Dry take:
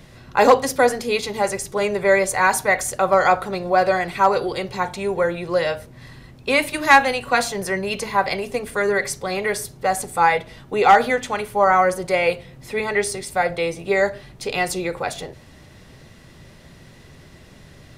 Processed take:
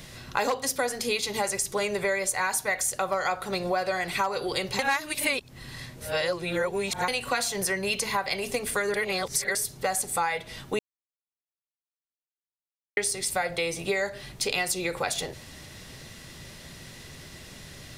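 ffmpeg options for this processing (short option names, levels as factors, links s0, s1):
-filter_complex "[0:a]asplit=7[s0][s1][s2][s3][s4][s5][s6];[s0]atrim=end=4.792[s7];[s1]atrim=start=4.788:end=7.082,asetpts=PTS-STARTPTS,areverse[s8];[s2]atrim=start=7.078:end=8.942[s9];[s3]atrim=start=8.938:end=9.552,asetpts=PTS-STARTPTS,areverse[s10];[s4]atrim=start=9.548:end=10.79,asetpts=PTS-STARTPTS,afade=t=out:st=1.238:d=0.004:c=hsin[s11];[s5]atrim=start=10.79:end=12.97,asetpts=PTS-STARTPTS,volume=0[s12];[s6]atrim=start=12.97,asetpts=PTS-STARTPTS,afade=t=in:d=0.004:c=hsin[s13];[s7][s8]acrossfade=d=0.004:c1=hsin:c2=hsin[s14];[s14][s9]acrossfade=d=0.004:c1=hsin:c2=hsin[s15];[s15][s10]acrossfade=d=0.004:c1=hsin:c2=hsin[s16];[s11][s12][s13]concat=n=3:v=0:a=1[s17];[s16][s17]acrossfade=d=0.004:c1=hsin:c2=hsin,highshelf=f=2300:g=11,acompressor=threshold=0.0708:ratio=6,volume=0.841"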